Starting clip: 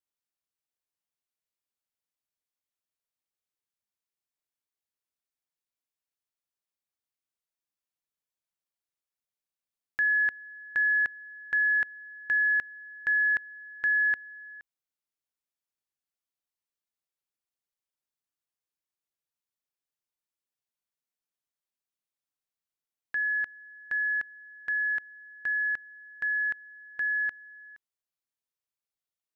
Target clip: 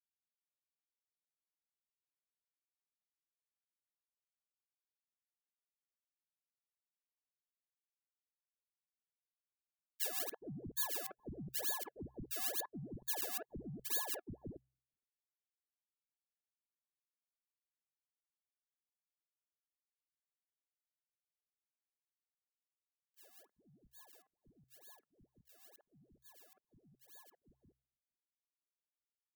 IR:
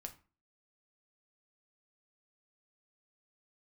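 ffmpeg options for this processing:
-filter_complex "[0:a]equalizer=frequency=2200:width_type=o:width=1.9:gain=-14.5,agate=range=-46dB:threshold=-37dB:ratio=16:detection=peak,aecho=1:1:5.1:0.86,acrusher=samples=32:mix=1:aa=0.000001:lfo=1:lforange=32:lforate=2.2,acrossover=split=390|1700[link_01][link_02][link_03];[link_02]adelay=50[link_04];[link_01]adelay=420[link_05];[link_05][link_04][link_03]amix=inputs=3:normalize=0,asoftclip=type=hard:threshold=-37.5dB,acompressor=threshold=-49dB:ratio=6,aemphasis=mode=production:type=75fm,bandreject=frequency=64.43:width_type=h:width=4,bandreject=frequency=128.86:width_type=h:width=4,volume=5dB"

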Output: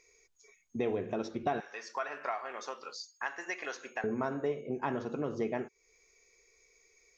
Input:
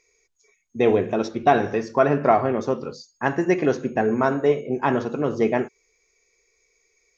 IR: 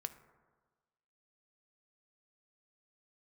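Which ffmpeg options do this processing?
-filter_complex "[0:a]asettb=1/sr,asplit=3[link_01][link_02][link_03];[link_01]atrim=end=1.604[link_04];[link_02]atrim=start=1.6:end=4.04,asetpts=PTS-STARTPTS,afade=type=in:duration=0.004:curve=qsin,afade=type=out:start_time=2.436:duration=0.004:curve=qsin,highpass=1200[link_05];[link_03]atrim=start=4.036[link_06];[link_04][link_05]acrossfade=duration=0.004:curve1=hsin:curve2=qsin[link_07];[link_07][link_06]acrossfade=duration=0.004:curve1=qsin:curve2=hsin,acompressor=threshold=-37dB:ratio=2.5"

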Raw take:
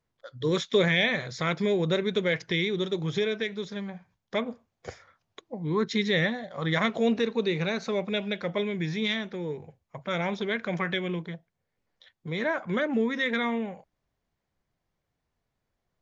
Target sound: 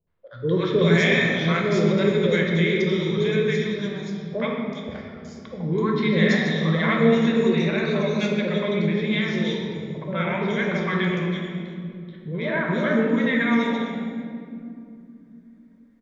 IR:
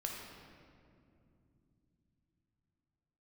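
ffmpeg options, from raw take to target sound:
-filter_complex "[0:a]acrossover=split=620|3700[link_01][link_02][link_03];[link_02]adelay=70[link_04];[link_03]adelay=400[link_05];[link_01][link_04][link_05]amix=inputs=3:normalize=0[link_06];[1:a]atrim=start_sample=2205[link_07];[link_06][link_07]afir=irnorm=-1:irlink=0,volume=5.5dB"

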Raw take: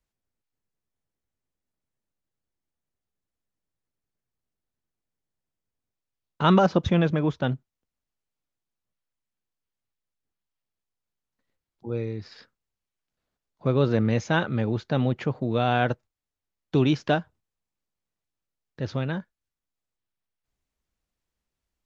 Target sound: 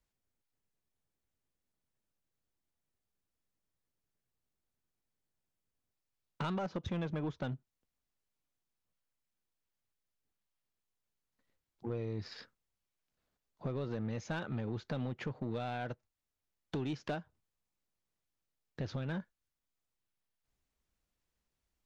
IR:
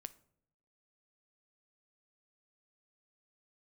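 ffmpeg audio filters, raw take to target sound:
-af "acompressor=threshold=-31dB:ratio=12,asoftclip=type=tanh:threshold=-29.5dB,aeval=exprs='0.0335*(cos(1*acos(clip(val(0)/0.0335,-1,1)))-cos(1*PI/2))+0.000668*(cos(7*acos(clip(val(0)/0.0335,-1,1)))-cos(7*PI/2))':channel_layout=same"

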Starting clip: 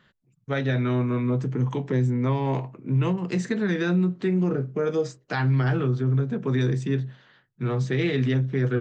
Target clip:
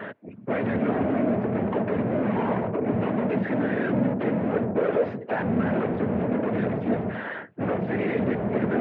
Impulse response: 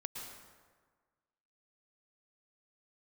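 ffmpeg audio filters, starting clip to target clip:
-filter_complex "[0:a]lowshelf=frequency=310:gain=9.5,acrossover=split=250|880|1500[link_01][link_02][link_03][link_04];[link_02]acompressor=threshold=-33dB:ratio=6[link_05];[link_01][link_05][link_03][link_04]amix=inputs=4:normalize=0,asplit=2[link_06][link_07];[link_07]highpass=frequency=720:poles=1,volume=44dB,asoftclip=type=tanh:threshold=-13.5dB[link_08];[link_06][link_08]amix=inputs=2:normalize=0,lowpass=frequency=1400:poles=1,volume=-6dB,afftfilt=real='hypot(re,im)*cos(2*PI*random(0))':imag='hypot(re,im)*sin(2*PI*random(1))':win_size=512:overlap=0.75,highpass=frequency=120:width=0.5412,highpass=frequency=120:width=1.3066,equalizer=frequency=150:width_type=q:width=4:gain=-9,equalizer=frequency=240:width_type=q:width=4:gain=4,equalizer=frequency=440:width_type=q:width=4:gain=5,equalizer=frequency=630:width_type=q:width=4:gain=8,equalizer=frequency=1200:width_type=q:width=4:gain=-4,lowpass=frequency=2400:width=0.5412,lowpass=frequency=2400:width=1.3066"

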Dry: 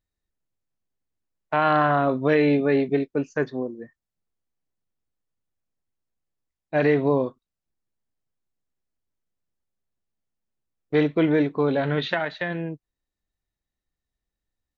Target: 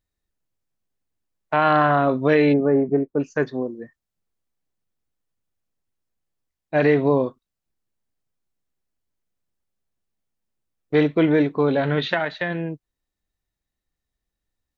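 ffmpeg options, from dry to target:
ffmpeg -i in.wav -filter_complex "[0:a]asplit=3[link_01][link_02][link_03];[link_01]afade=type=out:start_time=2.52:duration=0.02[link_04];[link_02]lowpass=frequency=1300:width=0.5412,lowpass=frequency=1300:width=1.3066,afade=type=in:start_time=2.52:duration=0.02,afade=type=out:start_time=3.19:duration=0.02[link_05];[link_03]afade=type=in:start_time=3.19:duration=0.02[link_06];[link_04][link_05][link_06]amix=inputs=3:normalize=0,volume=2.5dB" out.wav

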